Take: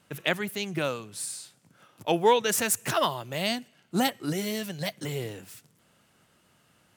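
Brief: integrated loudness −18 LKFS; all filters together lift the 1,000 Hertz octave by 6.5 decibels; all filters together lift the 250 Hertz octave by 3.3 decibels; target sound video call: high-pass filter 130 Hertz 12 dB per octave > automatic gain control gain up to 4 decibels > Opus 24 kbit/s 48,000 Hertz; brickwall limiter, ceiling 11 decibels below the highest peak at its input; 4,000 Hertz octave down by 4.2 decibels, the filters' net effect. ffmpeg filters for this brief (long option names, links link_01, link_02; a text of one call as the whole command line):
ffmpeg -i in.wav -af "equalizer=frequency=250:width_type=o:gain=4.5,equalizer=frequency=1000:width_type=o:gain=7.5,equalizer=frequency=4000:width_type=o:gain=-6.5,alimiter=limit=-16.5dB:level=0:latency=1,highpass=130,dynaudnorm=maxgain=4dB,volume=12dB" -ar 48000 -c:a libopus -b:a 24k out.opus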